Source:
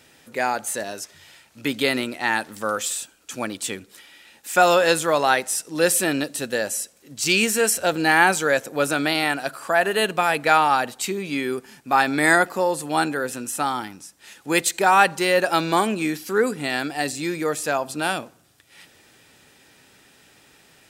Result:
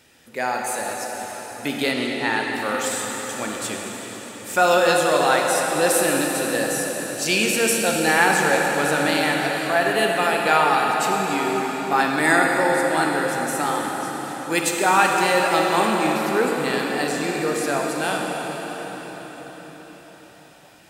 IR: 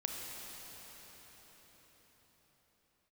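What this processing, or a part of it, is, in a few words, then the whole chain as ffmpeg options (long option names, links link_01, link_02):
cathedral: -filter_complex "[1:a]atrim=start_sample=2205[link_01];[0:a][link_01]afir=irnorm=-1:irlink=0,asettb=1/sr,asplit=3[link_02][link_03][link_04];[link_02]atrim=end=1.914[link_05];[link_03]atrim=start=1.91:end=2.55,asetpts=PTS-STARTPTS,afade=type=in:duration=0.004:curve=qsin,afade=type=out:start_time=0.636:duration=0.004:curve=qsin,lowpass=8700[link_06];[link_04]atrim=start=2.546[link_07];[link_05][link_06]acrossfade=duration=0.004:curve1=hsin:curve2=qsin[link_08];[link_08][link_07]acrossfade=duration=0.004:curve1=qsin:curve2=hsin,volume=-1dB"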